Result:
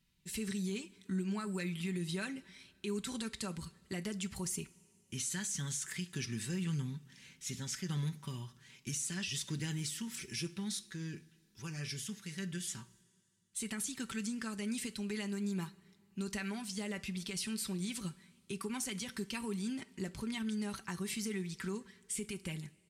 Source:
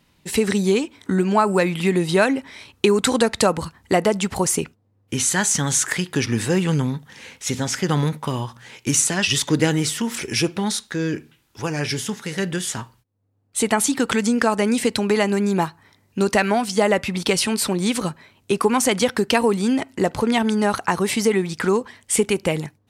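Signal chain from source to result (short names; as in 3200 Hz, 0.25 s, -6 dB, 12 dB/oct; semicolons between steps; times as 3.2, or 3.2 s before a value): passive tone stack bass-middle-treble 6-0-2; comb 5.2 ms, depth 51%; limiter -28.5 dBFS, peak gain reduction 9.5 dB; two-slope reverb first 0.39 s, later 2.6 s, from -16 dB, DRR 14 dB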